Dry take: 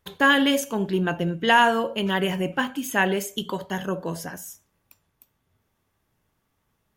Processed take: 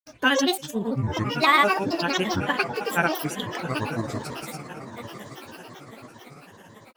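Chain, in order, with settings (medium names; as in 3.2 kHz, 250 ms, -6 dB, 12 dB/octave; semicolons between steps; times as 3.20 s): echo that smears into a reverb 1031 ms, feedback 50%, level -10 dB; granulator, grains 18 per s, pitch spread up and down by 12 st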